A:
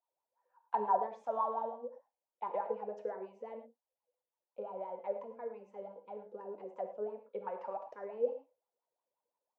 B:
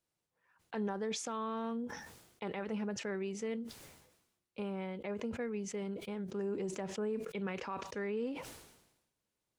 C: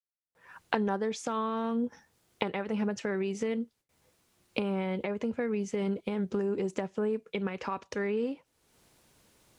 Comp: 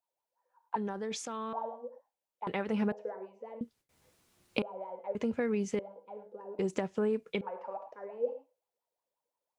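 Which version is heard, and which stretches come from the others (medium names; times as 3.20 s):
A
0.76–1.53 s: from B
2.47–2.92 s: from C
3.61–4.62 s: from C
5.15–5.79 s: from C
6.59–7.41 s: from C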